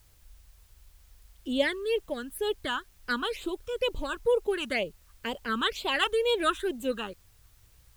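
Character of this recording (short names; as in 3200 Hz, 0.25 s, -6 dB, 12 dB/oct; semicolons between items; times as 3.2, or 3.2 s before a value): phasing stages 8, 2.1 Hz, lowest notch 600–1800 Hz; a quantiser's noise floor 12-bit, dither triangular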